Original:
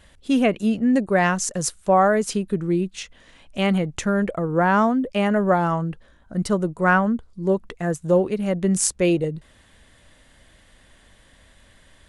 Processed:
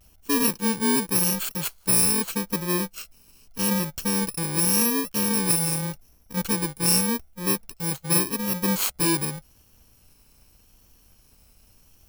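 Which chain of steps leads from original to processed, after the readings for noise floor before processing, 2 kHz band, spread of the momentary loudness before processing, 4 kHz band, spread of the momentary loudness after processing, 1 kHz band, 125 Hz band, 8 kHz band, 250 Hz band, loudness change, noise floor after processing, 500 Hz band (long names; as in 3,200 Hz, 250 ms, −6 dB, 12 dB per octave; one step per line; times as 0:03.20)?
−55 dBFS, −6.5 dB, 10 LU, +6.0 dB, 10 LU, −10.0 dB, −4.5 dB, +5.5 dB, −5.5 dB, −1.5 dB, −58 dBFS, −10.5 dB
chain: samples in bit-reversed order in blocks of 64 samples
pitch vibrato 0.85 Hz 58 cents
level −3 dB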